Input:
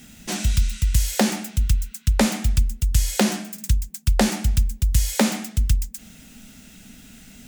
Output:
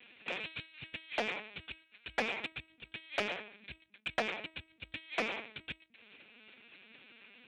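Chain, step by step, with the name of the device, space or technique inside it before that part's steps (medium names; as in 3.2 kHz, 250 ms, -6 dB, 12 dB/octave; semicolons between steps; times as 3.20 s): talking toy (LPC vocoder at 8 kHz pitch kept; high-pass 460 Hz 12 dB/octave; peaking EQ 2.4 kHz +9.5 dB 0.3 oct; saturation -18.5 dBFS, distortion -12 dB); trim -5.5 dB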